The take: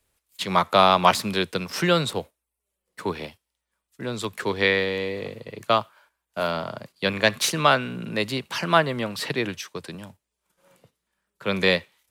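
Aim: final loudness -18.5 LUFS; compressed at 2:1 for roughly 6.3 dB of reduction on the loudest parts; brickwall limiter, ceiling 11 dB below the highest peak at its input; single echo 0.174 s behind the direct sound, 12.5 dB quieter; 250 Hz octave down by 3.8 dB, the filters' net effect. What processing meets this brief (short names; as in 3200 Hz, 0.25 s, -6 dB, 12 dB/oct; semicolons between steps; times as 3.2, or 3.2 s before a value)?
bell 250 Hz -6 dB; compressor 2:1, threshold -23 dBFS; limiter -16.5 dBFS; echo 0.174 s -12.5 dB; gain +12 dB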